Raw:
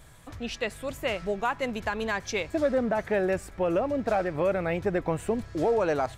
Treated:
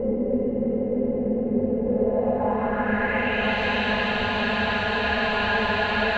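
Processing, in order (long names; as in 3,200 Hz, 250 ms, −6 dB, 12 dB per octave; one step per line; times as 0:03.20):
extreme stretch with random phases 30×, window 0.50 s, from 0:01.68
low-pass filter sweep 380 Hz → 3,700 Hz, 0:01.85–0:03.60
echo through a band-pass that steps 326 ms, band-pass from 2,700 Hz, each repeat −0.7 octaves, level −2 dB
level +6 dB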